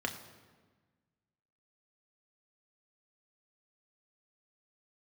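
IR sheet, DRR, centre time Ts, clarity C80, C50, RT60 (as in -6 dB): 3.0 dB, 19 ms, 11.5 dB, 10.5 dB, 1.4 s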